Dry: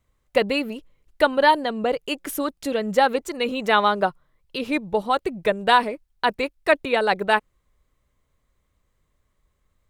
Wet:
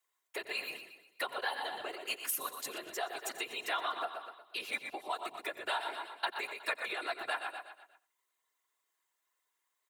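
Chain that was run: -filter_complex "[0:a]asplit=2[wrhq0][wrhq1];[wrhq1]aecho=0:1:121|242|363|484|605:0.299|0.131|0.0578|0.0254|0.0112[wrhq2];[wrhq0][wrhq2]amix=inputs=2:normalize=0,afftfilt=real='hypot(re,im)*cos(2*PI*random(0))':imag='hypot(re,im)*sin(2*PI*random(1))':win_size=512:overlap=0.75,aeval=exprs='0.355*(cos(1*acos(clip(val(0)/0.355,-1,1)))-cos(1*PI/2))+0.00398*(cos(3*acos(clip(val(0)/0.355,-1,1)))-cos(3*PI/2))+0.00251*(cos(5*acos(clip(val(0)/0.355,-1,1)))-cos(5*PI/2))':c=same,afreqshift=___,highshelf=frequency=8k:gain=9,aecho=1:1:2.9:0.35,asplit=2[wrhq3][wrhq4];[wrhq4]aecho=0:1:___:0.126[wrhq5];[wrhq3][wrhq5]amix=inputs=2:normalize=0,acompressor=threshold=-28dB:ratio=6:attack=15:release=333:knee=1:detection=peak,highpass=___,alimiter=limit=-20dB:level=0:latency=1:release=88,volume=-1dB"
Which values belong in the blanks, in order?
-87, 88, 840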